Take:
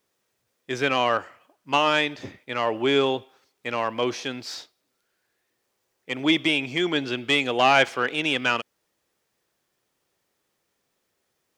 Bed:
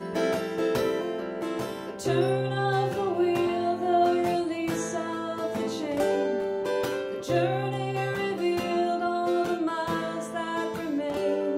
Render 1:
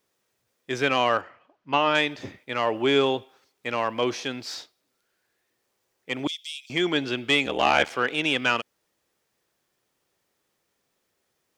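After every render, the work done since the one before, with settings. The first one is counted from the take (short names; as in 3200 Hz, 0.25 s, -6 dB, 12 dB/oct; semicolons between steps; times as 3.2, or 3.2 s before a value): 1.21–1.95 air absorption 190 m; 6.27–6.7 inverse Chebyshev high-pass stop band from 700 Hz, stop band 80 dB; 7.45–7.91 ring modulator 38 Hz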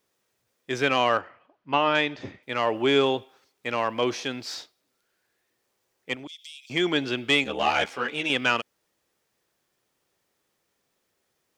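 1.19–2.43 air absorption 90 m; 6.14–6.71 compressor 3:1, threshold -41 dBFS; 7.44–8.3 ensemble effect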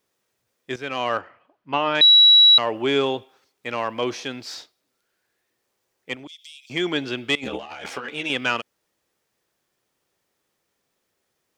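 0.76–1.2 fade in, from -12.5 dB; 2.01–2.58 bleep 3900 Hz -8.5 dBFS; 7.35–8.09 negative-ratio compressor -34 dBFS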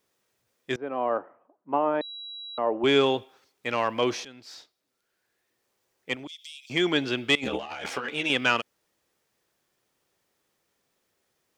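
0.76–2.84 Butterworth band-pass 450 Hz, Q 0.59; 4.25–6.21 fade in equal-power, from -17.5 dB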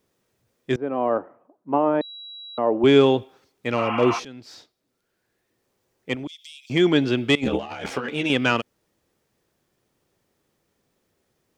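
3.8–4.16 spectral repair 680–3300 Hz before; low shelf 470 Hz +11.5 dB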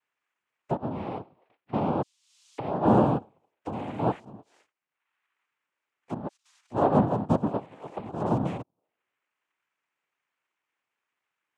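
auto-wah 290–1600 Hz, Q 3.4, down, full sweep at -26 dBFS; noise vocoder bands 4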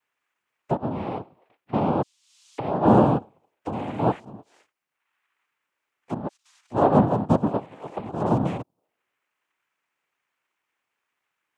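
gain +4 dB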